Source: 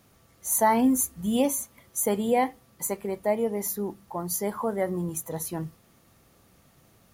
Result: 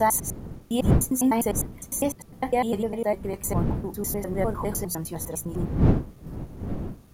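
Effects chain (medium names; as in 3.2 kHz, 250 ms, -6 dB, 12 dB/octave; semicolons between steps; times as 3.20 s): slices played last to first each 101 ms, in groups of 7; wind noise 200 Hz -29 dBFS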